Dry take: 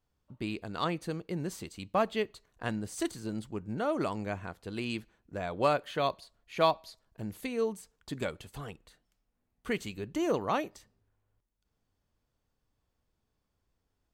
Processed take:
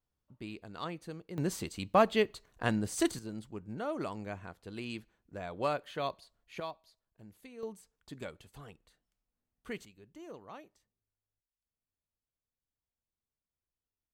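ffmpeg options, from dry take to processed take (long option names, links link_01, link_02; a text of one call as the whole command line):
ffmpeg -i in.wav -af "asetnsamples=nb_out_samples=441:pad=0,asendcmd='1.38 volume volume 3.5dB;3.19 volume volume -5.5dB;6.6 volume volume -15.5dB;7.63 volume volume -8.5dB;9.85 volume volume -18.5dB',volume=-8dB" out.wav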